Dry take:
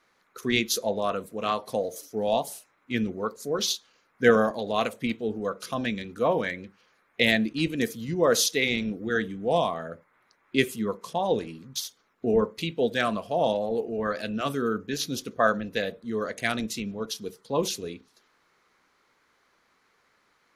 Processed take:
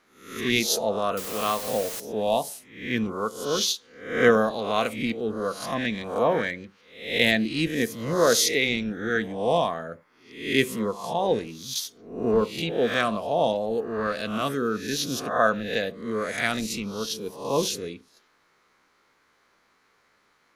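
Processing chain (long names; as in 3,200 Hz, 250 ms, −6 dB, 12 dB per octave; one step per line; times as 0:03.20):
peak hold with a rise ahead of every peak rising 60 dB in 0.56 s
0:01.17–0:02.00: bit-depth reduction 6 bits, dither triangular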